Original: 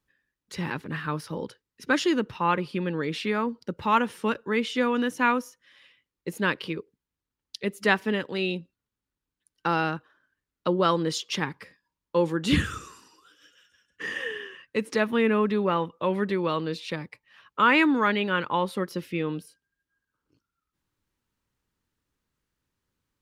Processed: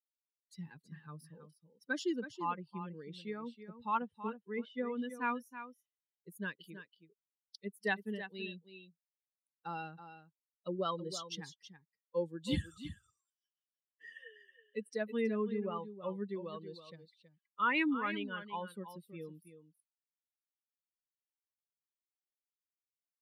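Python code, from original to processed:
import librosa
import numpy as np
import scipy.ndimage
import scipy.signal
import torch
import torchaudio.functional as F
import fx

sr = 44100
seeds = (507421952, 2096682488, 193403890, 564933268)

y = fx.bin_expand(x, sr, power=2.0)
y = fx.lowpass(y, sr, hz=2200.0, slope=12, at=(3.97, 5.02))
y = y + 10.0 ** (-11.5 / 20.0) * np.pad(y, (int(324 * sr / 1000.0), 0))[:len(y)]
y = F.gain(torch.from_numpy(y), -8.5).numpy()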